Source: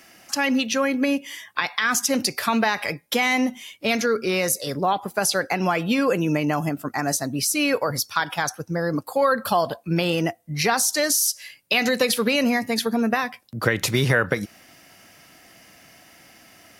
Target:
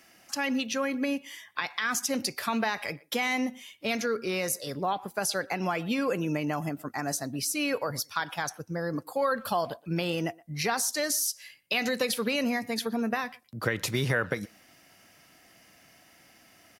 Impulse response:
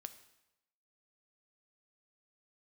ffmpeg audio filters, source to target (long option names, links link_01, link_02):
-filter_complex "[0:a]asplit=2[link_01][link_02];[link_02]adelay=120,highpass=300,lowpass=3400,asoftclip=type=hard:threshold=-15dB,volume=-23dB[link_03];[link_01][link_03]amix=inputs=2:normalize=0,volume=-7.5dB"